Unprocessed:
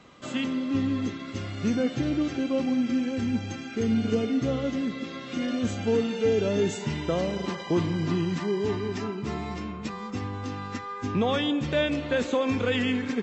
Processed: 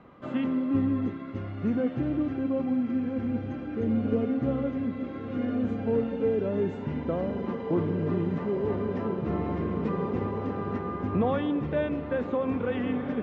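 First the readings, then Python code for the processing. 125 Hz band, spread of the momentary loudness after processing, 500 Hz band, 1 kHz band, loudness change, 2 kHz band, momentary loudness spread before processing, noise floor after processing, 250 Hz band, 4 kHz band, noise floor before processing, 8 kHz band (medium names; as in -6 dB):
-0.5 dB, 5 LU, -1.5 dB, -1.5 dB, -1.0 dB, -7.5 dB, 9 LU, -37 dBFS, -0.5 dB, under -15 dB, -38 dBFS, no reading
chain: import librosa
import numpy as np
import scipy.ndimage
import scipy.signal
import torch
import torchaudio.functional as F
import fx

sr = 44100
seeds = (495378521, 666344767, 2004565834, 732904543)

p1 = scipy.signal.sosfilt(scipy.signal.butter(2, 1400.0, 'lowpass', fs=sr, output='sos'), x)
p2 = p1 + fx.echo_diffused(p1, sr, ms=1623, feedback_pct=58, wet_db=-7.5, dry=0)
p3 = fx.rider(p2, sr, range_db=5, speed_s=2.0)
y = F.gain(torch.from_numpy(p3), -2.0).numpy()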